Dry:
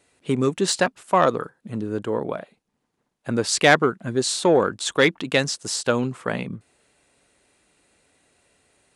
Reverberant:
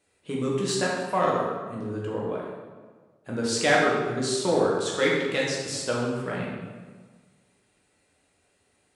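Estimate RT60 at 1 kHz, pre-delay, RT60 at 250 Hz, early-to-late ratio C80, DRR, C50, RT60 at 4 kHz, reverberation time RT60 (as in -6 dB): 1.4 s, 6 ms, 1.6 s, 3.0 dB, -4.5 dB, 0.5 dB, 1.0 s, 1.5 s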